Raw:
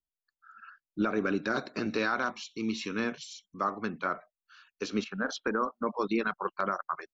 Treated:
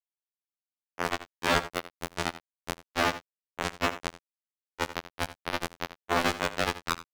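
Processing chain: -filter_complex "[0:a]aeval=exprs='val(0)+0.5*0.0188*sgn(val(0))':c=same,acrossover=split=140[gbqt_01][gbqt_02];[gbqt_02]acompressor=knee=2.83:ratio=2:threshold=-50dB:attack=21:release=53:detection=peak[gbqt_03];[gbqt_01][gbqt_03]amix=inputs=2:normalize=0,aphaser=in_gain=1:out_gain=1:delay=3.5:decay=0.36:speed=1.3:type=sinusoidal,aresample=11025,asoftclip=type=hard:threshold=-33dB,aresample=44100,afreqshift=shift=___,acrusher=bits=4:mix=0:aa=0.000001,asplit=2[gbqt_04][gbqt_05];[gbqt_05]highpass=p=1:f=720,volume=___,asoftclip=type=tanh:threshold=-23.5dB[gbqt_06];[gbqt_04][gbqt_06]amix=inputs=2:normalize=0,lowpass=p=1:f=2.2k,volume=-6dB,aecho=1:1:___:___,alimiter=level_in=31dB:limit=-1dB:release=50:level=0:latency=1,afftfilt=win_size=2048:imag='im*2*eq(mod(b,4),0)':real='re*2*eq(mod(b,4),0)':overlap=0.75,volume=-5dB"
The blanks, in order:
26, 22dB, 83, 0.0944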